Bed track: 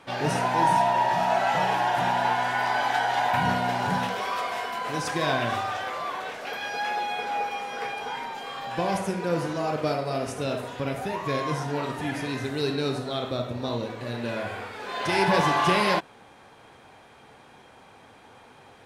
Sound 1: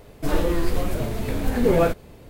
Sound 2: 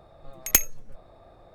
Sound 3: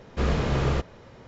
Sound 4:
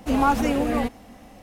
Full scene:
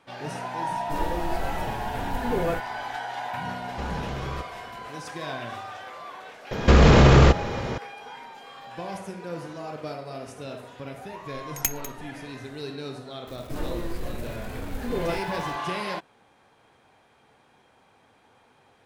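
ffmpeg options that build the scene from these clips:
-filter_complex "[1:a]asplit=2[a][b];[3:a]asplit=2[c][d];[0:a]volume=-8.5dB[e];[c]acompressor=threshold=-28dB:ratio=6:attack=3.2:release=140:knee=1:detection=peak[f];[d]alimiter=level_in=23.5dB:limit=-1dB:release=50:level=0:latency=1[g];[2:a]aecho=1:1:198:0.178[h];[b]aeval=exprs='val(0)+0.5*0.0251*sgn(val(0))':c=same[i];[a]atrim=end=2.29,asetpts=PTS-STARTPTS,volume=-8dB,afade=t=in:d=0.004:c=hsin,afade=t=out:st=2.286:d=0.004:c=hsin,adelay=670[j];[f]atrim=end=1.27,asetpts=PTS-STARTPTS,volume=-1dB,afade=t=in:d=0.004:c=hsin,afade=t=out:st=1.266:d=0.004:c=hsin,adelay=159201S[k];[g]atrim=end=1.27,asetpts=PTS-STARTPTS,volume=-5dB,afade=t=in:d=0.004:c=hsin,afade=t=out:st=1.266:d=0.004:c=hsin,adelay=6510[l];[h]atrim=end=1.54,asetpts=PTS-STARTPTS,volume=-7dB,afade=t=in:d=0.004:c=hsin,afade=t=out:st=1.536:d=0.004:c=hsin,adelay=11100[m];[i]atrim=end=2.29,asetpts=PTS-STARTPTS,volume=-10.5dB,afade=t=in:d=0.004:c=hsin,afade=t=out:st=2.286:d=0.004:c=hsin,adelay=13270[n];[e][j][k][l][m][n]amix=inputs=6:normalize=0"

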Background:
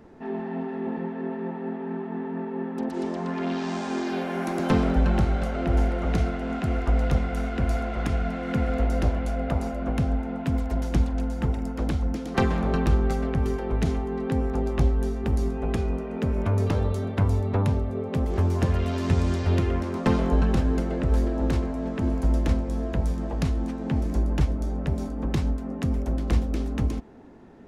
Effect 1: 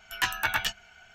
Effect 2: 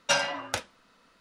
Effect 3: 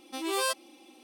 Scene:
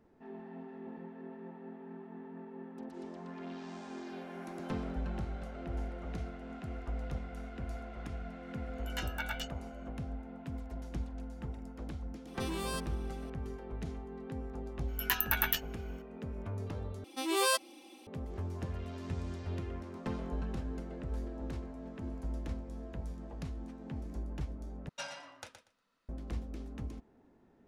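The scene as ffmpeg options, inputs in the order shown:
-filter_complex "[1:a]asplit=2[a][b];[3:a]asplit=2[c][d];[0:a]volume=-16dB[e];[a]aecho=1:1:1.4:0.88[f];[c]acompressor=threshold=-32dB:ratio=6:attack=3.2:release=140:knee=1:detection=peak[g];[b]aexciter=amount=9.6:drive=4.1:freq=11k[h];[2:a]aecho=1:1:119|238|357:0.355|0.0603|0.0103[i];[e]asplit=3[j][k][l];[j]atrim=end=17.044[m];[d]atrim=end=1.03[n];[k]atrim=start=18.066:end=24.894[o];[i]atrim=end=1.2,asetpts=PTS-STARTPTS,volume=-18dB[p];[l]atrim=start=26.086[q];[f]atrim=end=1.14,asetpts=PTS-STARTPTS,volume=-15dB,afade=t=in:d=0.004:c=hsin,afade=t=out:st=1.136:d=0.004:c=hsin,adelay=8750[r];[g]atrim=end=1.03,asetpts=PTS-STARTPTS,volume=-3dB,afade=t=in:d=0.004:c=hsin,afade=t=out:st=1.026:d=0.004:c=hsin,adelay=12270[s];[h]atrim=end=1.14,asetpts=PTS-STARTPTS,volume=-6.5dB,afade=t=in:d=0.004:c=hsin,afade=t=out:st=1.136:d=0.004:c=hsin,adelay=14880[t];[m][n]acrossfade=d=0.004:c1=hsin:c2=hsin[u];[u][o]acrossfade=d=0.004:c1=hsin:c2=hsin[v];[v][p]acrossfade=d=0.004:c1=hsin:c2=hsin[w];[w][q]acrossfade=d=0.004:c1=hsin:c2=hsin[x];[x][r][s][t]amix=inputs=4:normalize=0"

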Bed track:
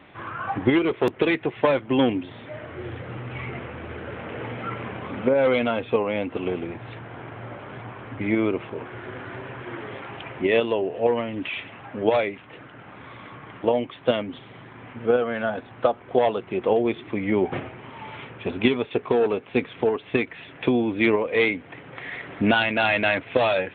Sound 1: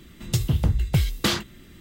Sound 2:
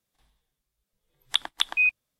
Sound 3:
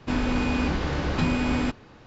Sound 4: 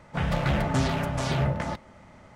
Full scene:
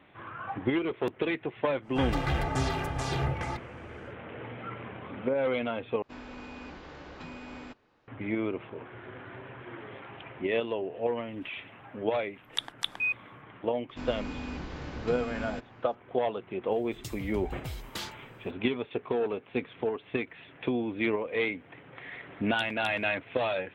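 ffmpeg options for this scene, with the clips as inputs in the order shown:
-filter_complex "[3:a]asplit=2[a][b];[2:a]asplit=2[c][d];[0:a]volume=-8.5dB[e];[4:a]aecho=1:1:2.5:0.63[f];[a]bass=f=250:g=-9,treble=f=4k:g=-5[g];[1:a]equalizer=f=180:w=0.48:g=-8[h];[e]asplit=2[i][j];[i]atrim=end=6.024[k];[g]atrim=end=2.06,asetpts=PTS-STARTPTS,volume=-15.5dB[l];[j]atrim=start=8.076[m];[f]atrim=end=2.35,asetpts=PTS-STARTPTS,volume=-4.5dB,afade=t=in:d=0.1,afade=t=out:st=2.25:d=0.1,adelay=1810[n];[c]atrim=end=2.19,asetpts=PTS-STARTPTS,volume=-7.5dB,afade=t=in:d=0.004:c=hsin,afade=t=out:st=2.186:d=0.004:c=hsin,adelay=11230[o];[b]atrim=end=2.06,asetpts=PTS-STARTPTS,volume=-13dB,afade=t=in:d=0.004:c=hsin,afade=t=out:st=2.056:d=0.004:c=hsin,adelay=13890[p];[h]atrim=end=1.8,asetpts=PTS-STARTPTS,volume=-13.5dB,afade=t=in:d=0.004:c=hsin,afade=t=out:st=1.796:d=0.004:c=hsin,adelay=16710[q];[d]atrim=end=2.19,asetpts=PTS-STARTPTS,volume=-16dB,afade=t=in:d=0.004:c=hsin,afade=t=out:st=2.186:d=0.004:c=hsin,adelay=21250[r];[k][l]acrossfade=d=0.004:c1=hsin:c2=hsin[s];[s][m]acrossfade=d=0.004:c1=hsin:c2=hsin[t];[t][n][o][p][q][r]amix=inputs=6:normalize=0"

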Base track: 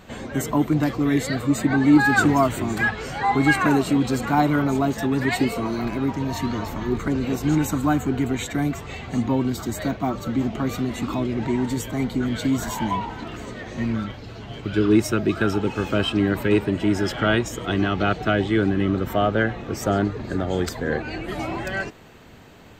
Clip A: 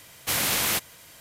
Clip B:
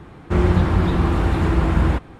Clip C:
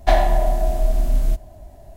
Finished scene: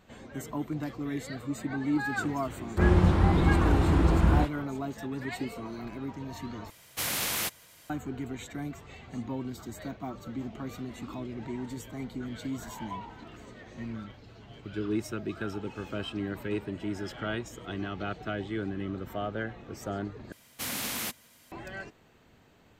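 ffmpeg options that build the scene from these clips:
-filter_complex "[1:a]asplit=2[a][b];[0:a]volume=-13.5dB[c];[2:a]acrossover=split=1900[d][e];[e]adelay=30[f];[d][f]amix=inputs=2:normalize=0[g];[b]equalizer=f=240:t=o:w=0.34:g=12.5[h];[c]asplit=3[i][j][k];[i]atrim=end=6.704[l];[a]atrim=end=1.2,asetpts=PTS-STARTPTS,volume=-6dB[m];[j]atrim=start=7.896:end=20.324[n];[h]atrim=end=1.2,asetpts=PTS-STARTPTS,volume=-9.5dB[o];[k]atrim=start=21.516[p];[g]atrim=end=2.19,asetpts=PTS-STARTPTS,volume=-5dB,afade=t=in:d=0.004:c=hsin,afade=t=out:st=2.186:d=0.004:c=hsin,adelay=2470[q];[l][m]acrossfade=d=0.004:c1=hsin:c2=hsin[r];[r][n]acrossfade=d=0.004:c1=hsin:c2=hsin[s];[s][o]acrossfade=d=0.004:c1=hsin:c2=hsin[t];[t][p]acrossfade=d=0.004:c1=hsin:c2=hsin[u];[u][q]amix=inputs=2:normalize=0"

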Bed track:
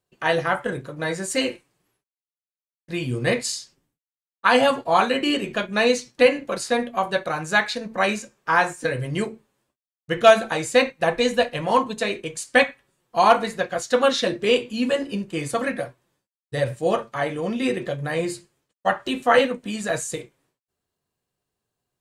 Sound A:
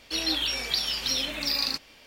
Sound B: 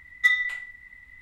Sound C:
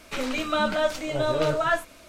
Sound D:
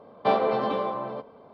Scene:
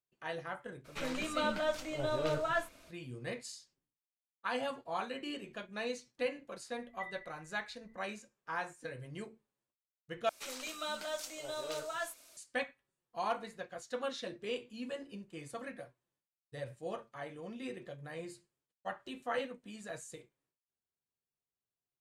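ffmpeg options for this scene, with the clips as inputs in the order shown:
-filter_complex "[3:a]asplit=2[a][b];[0:a]volume=-19.5dB[c];[2:a]lowpass=1.1k[d];[b]bass=f=250:g=-14,treble=f=4k:g=14[e];[c]asplit=2[f][g];[f]atrim=end=10.294[h];[e]atrim=end=2.08,asetpts=PTS-STARTPTS,volume=-15.5dB[i];[g]atrim=start=12.366[j];[a]atrim=end=2.08,asetpts=PTS-STARTPTS,volume=-9.5dB,afade=t=in:d=0.02,afade=t=out:st=2.06:d=0.02,adelay=840[k];[d]atrim=end=1.21,asetpts=PTS-STARTPTS,volume=-15dB,afade=t=in:d=0.004:c=hsin,afade=t=out:st=1.206:d=0.004:c=hsin,adelay=6760[l];[h][i]acrossfade=d=0.004:c1=hsin:c2=hsin[m];[m][j]acrossfade=d=0.004:c1=hsin:c2=hsin[n];[n][k][l]amix=inputs=3:normalize=0"

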